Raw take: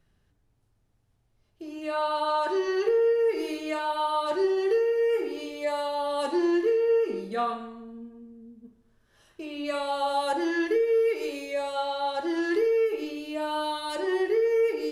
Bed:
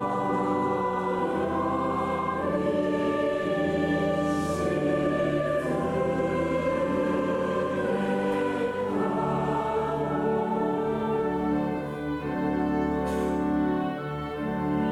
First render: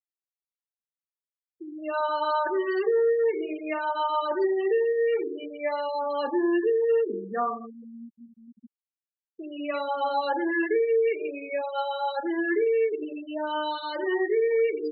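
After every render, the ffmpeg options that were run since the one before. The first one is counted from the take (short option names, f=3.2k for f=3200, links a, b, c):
-af "adynamicequalizer=threshold=0.00631:dfrequency=1900:dqfactor=1.5:tfrequency=1900:tqfactor=1.5:attack=5:release=100:ratio=0.375:range=2:mode=boostabove:tftype=bell,afftfilt=real='re*gte(hypot(re,im),0.0501)':imag='im*gte(hypot(re,im),0.0501)':win_size=1024:overlap=0.75"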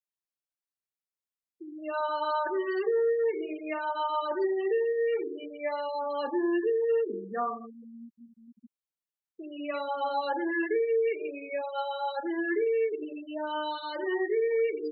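-af "volume=-3.5dB"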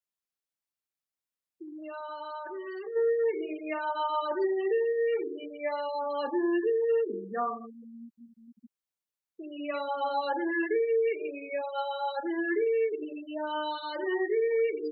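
-filter_complex "[0:a]asplit=3[a][b][c];[a]afade=t=out:st=1.63:d=0.02[d];[b]acompressor=threshold=-39dB:ratio=3:attack=3.2:release=140:knee=1:detection=peak,afade=t=in:st=1.63:d=0.02,afade=t=out:st=2.95:d=0.02[e];[c]afade=t=in:st=2.95:d=0.02[f];[d][e][f]amix=inputs=3:normalize=0"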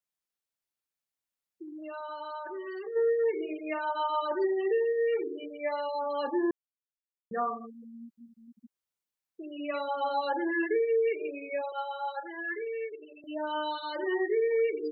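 -filter_complex "[0:a]asettb=1/sr,asplit=3[a][b][c];[a]atrim=end=11.724[d];[b]atrim=start=11.72:end=13.24,asetpts=PTS-STARTPTS,afade=t=in:d=0.004:c=qsin,afade=t=out:st=1.516:d=0.004:c=qsin,highpass=720,lowpass=2.7k[e];[c]atrim=start=13.236[f];[d][e]acrossfade=d=0.004:c1=hsin:c2=qsin[g];[g][f]acrossfade=d=0.004:c1=qsin:c2=hsin,asplit=3[h][i][j];[h]atrim=end=6.51,asetpts=PTS-STARTPTS,afade=t=out:st=6.506:d=0.004:c=hsin[k];[i]atrim=start=6.51:end=7.31,asetpts=PTS-STARTPTS,volume=0[l];[j]atrim=start=7.31,asetpts=PTS-STARTPTS,afade=t=in:d=0.004:c=hsin[m];[k][l][m]concat=n=3:v=0:a=1"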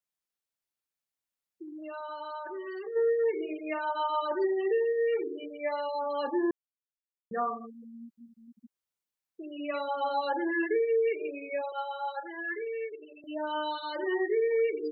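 -af anull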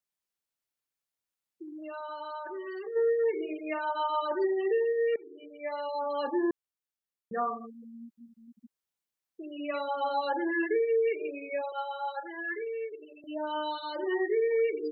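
-filter_complex "[0:a]asplit=3[a][b][c];[a]afade=t=out:st=12.63:d=0.02[d];[b]equalizer=f=1.9k:t=o:w=0.47:g=-9.5,afade=t=in:st=12.63:d=0.02,afade=t=out:st=14.09:d=0.02[e];[c]afade=t=in:st=14.09:d=0.02[f];[d][e][f]amix=inputs=3:normalize=0,asplit=2[g][h];[g]atrim=end=5.16,asetpts=PTS-STARTPTS,afade=t=out:st=5.156:d=0.004:c=hsin:silence=0.0944061[i];[h]atrim=start=5.16,asetpts=PTS-STARTPTS,afade=t=in:d=0.85:silence=0.0944061[j];[i][j]concat=n=2:v=0:a=1"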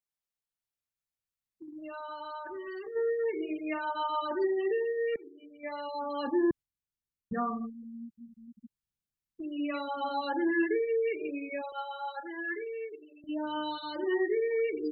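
-af "agate=range=-6dB:threshold=-43dB:ratio=16:detection=peak,asubboost=boost=9.5:cutoff=170"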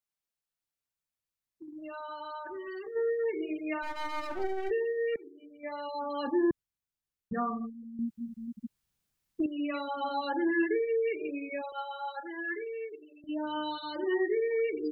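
-filter_complex "[0:a]asplit=3[a][b][c];[a]afade=t=out:st=3.82:d=0.02[d];[b]aeval=exprs='max(val(0),0)':c=same,afade=t=in:st=3.82:d=0.02,afade=t=out:st=4.69:d=0.02[e];[c]afade=t=in:st=4.69:d=0.02[f];[d][e][f]amix=inputs=3:normalize=0,asettb=1/sr,asplit=3[g][h][i];[g]atrim=end=5.254[j];[h]atrim=start=5.25:end=5.81,asetpts=PTS-STARTPTS,afade=t=in:d=0.004:c=qsin,afade=t=out:st=0.556:d=0.004:c=qsin,equalizer=f=2.8k:w=1.3:g=-4[k];[i]atrim=start=5.806[l];[j][k]acrossfade=d=0.004:c1=hsin:c2=qsin[m];[m][l]acrossfade=d=0.004:c1=qsin:c2=hsin,asplit=3[n][o][p];[n]atrim=end=7.992[q];[o]atrim=start=7.988:end=9.462,asetpts=PTS-STARTPTS,volume=10.5dB[r];[p]atrim=start=9.458[s];[q][r]acrossfade=d=0.004:c1=hsin:c2=hsin[t];[t][s]acrossfade=d=0.004:c1=hsin:c2=hsin"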